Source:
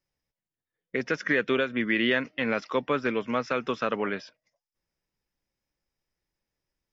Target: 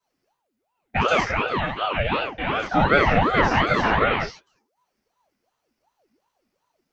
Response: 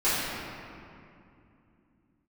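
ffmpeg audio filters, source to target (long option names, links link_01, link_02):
-filter_complex "[0:a]asettb=1/sr,asplit=3[link_01][link_02][link_03];[link_01]atrim=end=1.264[link_04];[link_02]atrim=start=1.26:end=2.71,asetpts=PTS-STARTPTS,afade=type=in:duration=0.004:curve=qsin,afade=type=out:start_time=1.446:duration=0.004:curve=qsin,acrossover=split=1000|2400[link_05][link_06][link_07];[link_05]acompressor=threshold=-32dB:ratio=4[link_08];[link_06]acompressor=threshold=-38dB:ratio=4[link_09];[link_07]acompressor=threshold=-47dB:ratio=4[link_10];[link_08][link_09][link_10]amix=inputs=3:normalize=0[link_11];[link_03]atrim=start=2.706[link_12];[link_04][link_11]acrossfade=duration=0.004:curve1=hsin:curve2=qsin[link_13];[link_13][link_12]acrossfade=duration=0.004:curve1=qsin:curve2=hsin[link_14];[1:a]atrim=start_sample=2205,afade=type=out:start_time=0.16:duration=0.01,atrim=end_sample=7497[link_15];[link_14][link_15]afir=irnorm=-1:irlink=0,aeval=exprs='val(0)*sin(2*PI*610*n/s+610*0.65/2.7*sin(2*PI*2.7*n/s))':channel_layout=same"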